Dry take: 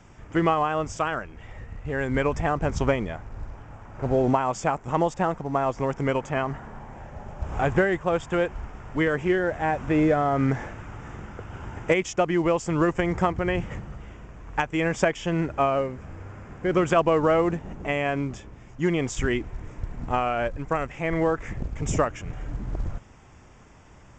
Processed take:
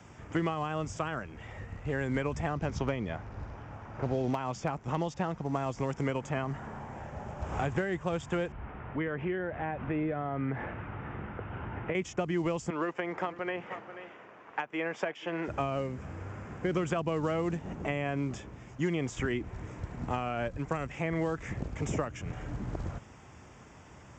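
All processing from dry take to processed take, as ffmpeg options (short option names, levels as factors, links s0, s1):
-filter_complex "[0:a]asettb=1/sr,asplit=3[s0][s1][s2];[s0]atrim=end=2.484[s3];[s1]atrim=start=2.48:end=5.41,asetpts=PTS-STARTPTS,afade=t=in:d=0.004:c=qsin,afade=t=out:st=2.926:d=0.004:c=qsin,lowpass=f=6200:w=0.5412,lowpass=f=6200:w=1.3066,asoftclip=type=hard:threshold=0.282[s4];[s2]atrim=start=5.406[s5];[s3][s4]acrossfade=d=0.004:c1=hsin:c2=qsin[s6];[s6][s5]acrossfade=d=0.004:c1=qsin:c2=hsin,asettb=1/sr,asplit=3[s7][s8][s9];[s7]atrim=end=8.524[s10];[s8]atrim=start=8.52:end=11.95,asetpts=PTS-STARTPTS,afade=t=in:d=0.004:c=qsin,afade=t=out:st=3.426:d=0.004:c=qsin,acompressor=threshold=0.0251:ratio=2:attack=3.2:release=140:knee=1:detection=peak,lowpass=f=2900:w=0.5412,lowpass=f=2900:w=1.3066[s11];[s9]atrim=start=11.946[s12];[s10][s11]acrossfade=d=0.004:c1=hsin:c2=qsin[s13];[s13][s12]acrossfade=d=0.004:c1=qsin:c2=hsin,asettb=1/sr,asplit=3[s14][s15][s16];[s14]atrim=end=12.704[s17];[s15]atrim=start=12.7:end=15.48,asetpts=PTS-STARTPTS,afade=t=in:d=0.004:c=qsin,afade=t=out:st=2.776:d=0.004:c=qsin,highpass=440,lowpass=3100,aecho=1:1:484:0.133,atrim=end_sample=122598[s18];[s16]atrim=start=15.476[s19];[s17][s18]acrossfade=d=0.004:c1=hsin:c2=qsin[s20];[s20][s19]acrossfade=d=0.004:c1=qsin:c2=hsin,highpass=70,acrossover=split=250|2600[s21][s22][s23];[s21]acompressor=threshold=0.0224:ratio=4[s24];[s22]acompressor=threshold=0.0224:ratio=4[s25];[s23]acompressor=threshold=0.00447:ratio=4[s26];[s24][s25][s26]amix=inputs=3:normalize=0"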